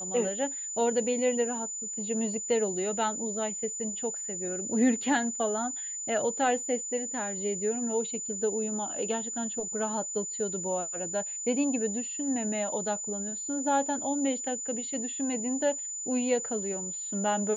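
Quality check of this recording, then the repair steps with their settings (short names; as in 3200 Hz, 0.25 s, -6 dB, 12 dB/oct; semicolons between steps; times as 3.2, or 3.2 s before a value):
tone 7000 Hz -34 dBFS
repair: notch 7000 Hz, Q 30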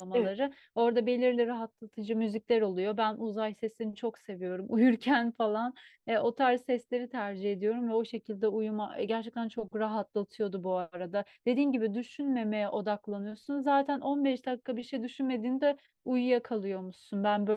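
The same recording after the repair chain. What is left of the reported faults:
none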